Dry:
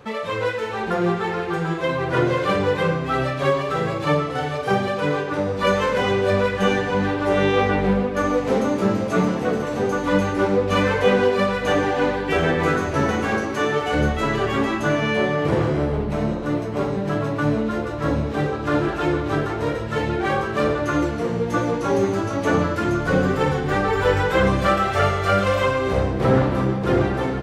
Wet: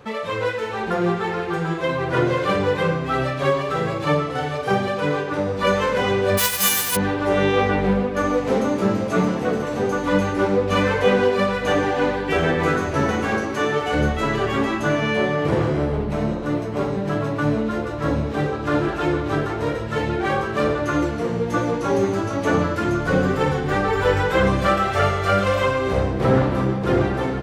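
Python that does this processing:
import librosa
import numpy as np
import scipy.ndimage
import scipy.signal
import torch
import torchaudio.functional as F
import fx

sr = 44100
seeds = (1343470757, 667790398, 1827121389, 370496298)

y = fx.envelope_flatten(x, sr, power=0.1, at=(6.37, 6.95), fade=0.02)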